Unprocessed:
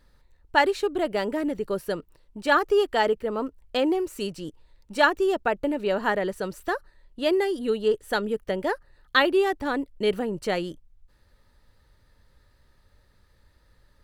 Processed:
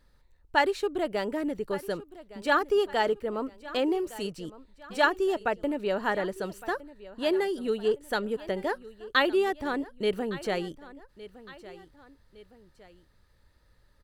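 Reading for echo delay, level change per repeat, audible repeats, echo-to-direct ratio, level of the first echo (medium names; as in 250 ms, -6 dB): 1161 ms, -6.5 dB, 2, -17.0 dB, -18.0 dB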